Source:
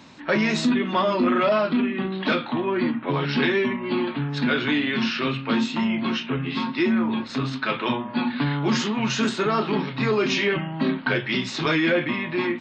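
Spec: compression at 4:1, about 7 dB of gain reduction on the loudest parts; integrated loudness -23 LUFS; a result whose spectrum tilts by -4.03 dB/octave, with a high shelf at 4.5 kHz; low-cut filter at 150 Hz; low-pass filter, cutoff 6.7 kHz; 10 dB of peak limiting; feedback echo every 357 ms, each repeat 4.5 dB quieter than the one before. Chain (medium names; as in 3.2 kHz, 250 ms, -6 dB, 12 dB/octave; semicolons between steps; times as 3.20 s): high-pass 150 Hz; low-pass 6.7 kHz; treble shelf 4.5 kHz -6.5 dB; compression 4:1, threshold -26 dBFS; peak limiter -25 dBFS; feedback delay 357 ms, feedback 60%, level -4.5 dB; trim +8 dB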